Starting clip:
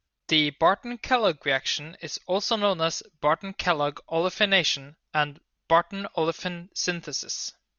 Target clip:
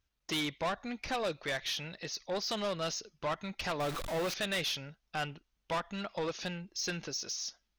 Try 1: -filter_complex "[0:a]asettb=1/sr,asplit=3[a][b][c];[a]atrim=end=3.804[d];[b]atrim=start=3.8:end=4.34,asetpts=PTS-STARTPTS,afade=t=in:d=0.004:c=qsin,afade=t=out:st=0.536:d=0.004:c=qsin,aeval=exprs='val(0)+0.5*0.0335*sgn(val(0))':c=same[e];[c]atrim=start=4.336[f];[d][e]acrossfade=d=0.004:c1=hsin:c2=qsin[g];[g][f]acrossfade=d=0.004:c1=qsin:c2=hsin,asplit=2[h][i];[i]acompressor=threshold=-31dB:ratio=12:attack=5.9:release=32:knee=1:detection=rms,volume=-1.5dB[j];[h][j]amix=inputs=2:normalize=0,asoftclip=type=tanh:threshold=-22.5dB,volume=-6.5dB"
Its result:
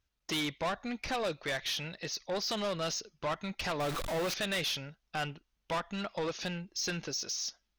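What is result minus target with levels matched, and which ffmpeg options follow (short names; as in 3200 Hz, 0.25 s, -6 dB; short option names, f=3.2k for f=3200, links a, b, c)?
compressor: peak gain reduction -10.5 dB
-filter_complex "[0:a]asettb=1/sr,asplit=3[a][b][c];[a]atrim=end=3.804[d];[b]atrim=start=3.8:end=4.34,asetpts=PTS-STARTPTS,afade=t=in:d=0.004:c=qsin,afade=t=out:st=0.536:d=0.004:c=qsin,aeval=exprs='val(0)+0.5*0.0335*sgn(val(0))':c=same[e];[c]atrim=start=4.336[f];[d][e]acrossfade=d=0.004:c1=hsin:c2=qsin[g];[g][f]acrossfade=d=0.004:c1=qsin:c2=hsin,asplit=2[h][i];[i]acompressor=threshold=-42.5dB:ratio=12:attack=5.9:release=32:knee=1:detection=rms,volume=-1.5dB[j];[h][j]amix=inputs=2:normalize=0,asoftclip=type=tanh:threshold=-22.5dB,volume=-6.5dB"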